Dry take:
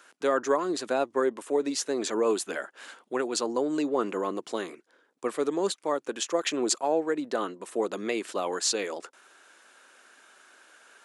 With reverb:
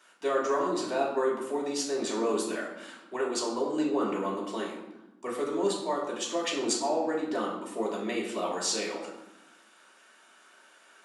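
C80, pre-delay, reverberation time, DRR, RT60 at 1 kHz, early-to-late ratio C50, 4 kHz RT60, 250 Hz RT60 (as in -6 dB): 6.5 dB, 3 ms, 0.95 s, -5.0 dB, 0.95 s, 4.0 dB, 0.65 s, 1.5 s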